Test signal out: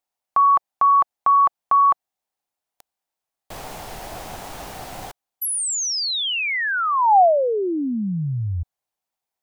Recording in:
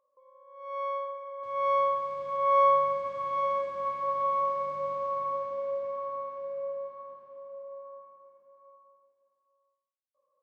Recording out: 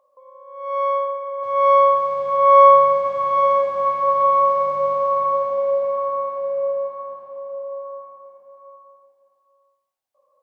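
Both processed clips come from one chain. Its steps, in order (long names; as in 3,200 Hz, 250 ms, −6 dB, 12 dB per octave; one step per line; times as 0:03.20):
parametric band 760 Hz +12.5 dB 0.76 octaves
level +7.5 dB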